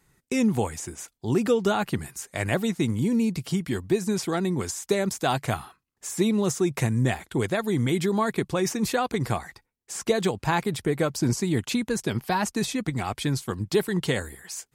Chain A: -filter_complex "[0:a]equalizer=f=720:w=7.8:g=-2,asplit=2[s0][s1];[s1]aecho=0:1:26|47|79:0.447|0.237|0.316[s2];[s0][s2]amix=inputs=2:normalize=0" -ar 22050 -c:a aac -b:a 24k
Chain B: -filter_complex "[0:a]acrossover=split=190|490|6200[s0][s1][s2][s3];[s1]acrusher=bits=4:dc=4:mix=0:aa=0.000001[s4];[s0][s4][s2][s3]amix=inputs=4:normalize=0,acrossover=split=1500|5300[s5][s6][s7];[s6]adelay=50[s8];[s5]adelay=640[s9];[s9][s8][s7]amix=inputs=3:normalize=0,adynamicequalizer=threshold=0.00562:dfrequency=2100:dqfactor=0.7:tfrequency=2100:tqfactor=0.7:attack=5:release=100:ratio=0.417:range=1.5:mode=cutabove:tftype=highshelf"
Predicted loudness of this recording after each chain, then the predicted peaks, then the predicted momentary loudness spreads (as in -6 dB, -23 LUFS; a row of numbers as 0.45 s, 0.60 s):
-25.0 LUFS, -29.0 LUFS; -8.0 dBFS, -8.0 dBFS; 8 LU, 10 LU